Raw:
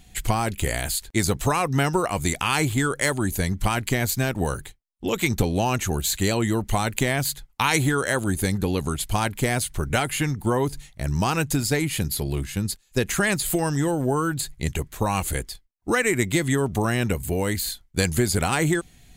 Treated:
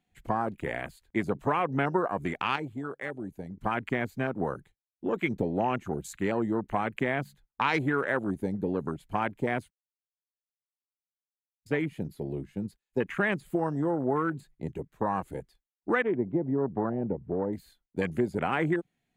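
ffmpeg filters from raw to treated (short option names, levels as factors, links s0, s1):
-filter_complex "[0:a]asettb=1/sr,asplit=3[s0][s1][s2];[s0]atrim=end=16.024[s3];[s1]atrim=start=16.02:end=17.53,asetpts=PTS-STARTPTS,afade=t=in:d=0.004:c=qsin,afade=t=out:st=1.506:d=0.004:c=qsin,lowpass=1000[s4];[s2]atrim=start=17.526[s5];[s3][s4]acrossfade=d=0.004:c1=hsin:c2=qsin[s6];[s6][s5]acrossfade=d=0.004:c1=qsin:c2=hsin,asplit=5[s7][s8][s9][s10][s11];[s7]atrim=end=2.562[s12];[s8]atrim=start=2.558:end=3.572,asetpts=PTS-STARTPTS,volume=0.447[s13];[s9]atrim=start=3.568:end=9.7,asetpts=PTS-STARTPTS,afade=t=out:st=6.128:d=0.004:c=hsin[s14];[s10]atrim=start=9.7:end=11.66,asetpts=PTS-STARTPTS,volume=0[s15];[s11]atrim=start=11.66,asetpts=PTS-STARTPTS,afade=t=in:d=0.004:c=hsin[s16];[s12][s13]acrossfade=d=0.004:c1=hsin:c2=hsin[s17];[s14][s15][s16]concat=n=3:v=0:a=1[s18];[s17][s18]acrossfade=d=0.004:c1=hsin:c2=hsin,afwtdn=0.0355,acrossover=split=150 2800:gain=0.1 1 0.224[s19][s20][s21];[s19][s20][s21]amix=inputs=3:normalize=0,volume=0.668"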